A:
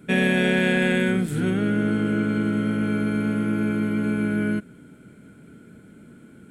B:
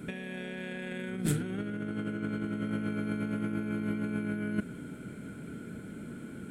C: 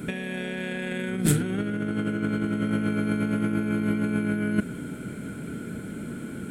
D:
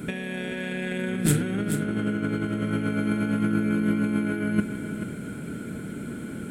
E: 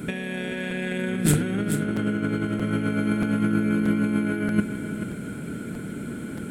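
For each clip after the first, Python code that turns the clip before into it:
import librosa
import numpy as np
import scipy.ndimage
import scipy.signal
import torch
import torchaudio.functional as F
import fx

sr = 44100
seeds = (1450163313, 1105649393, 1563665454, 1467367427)

y1 = fx.over_compress(x, sr, threshold_db=-28.0, ratio=-0.5)
y1 = F.gain(torch.from_numpy(y1), -3.5).numpy()
y2 = fx.high_shelf(y1, sr, hz=6700.0, db=4.0)
y2 = F.gain(torch.from_numpy(y2), 7.5).numpy()
y3 = y2 + 10.0 ** (-8.5 / 20.0) * np.pad(y2, (int(434 * sr / 1000.0), 0))[:len(y2)]
y4 = fx.buffer_crackle(y3, sr, first_s=0.7, period_s=0.63, block=256, kind='repeat')
y4 = F.gain(torch.from_numpy(y4), 1.5).numpy()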